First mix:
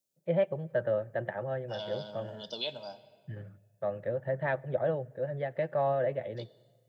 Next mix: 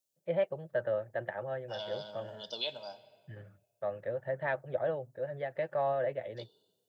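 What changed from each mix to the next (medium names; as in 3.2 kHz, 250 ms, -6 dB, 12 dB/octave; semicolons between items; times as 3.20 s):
first voice: send off; master: add peaking EQ 170 Hz -7.5 dB 2.2 oct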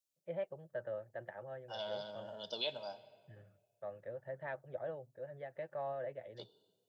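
first voice -9.5 dB; master: add treble shelf 3.9 kHz -6 dB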